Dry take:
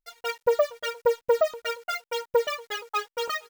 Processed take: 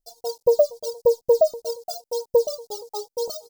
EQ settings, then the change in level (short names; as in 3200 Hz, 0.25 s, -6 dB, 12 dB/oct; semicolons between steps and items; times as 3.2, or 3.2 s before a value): elliptic band-stop 770–4700 Hz, stop band 70 dB; +6.0 dB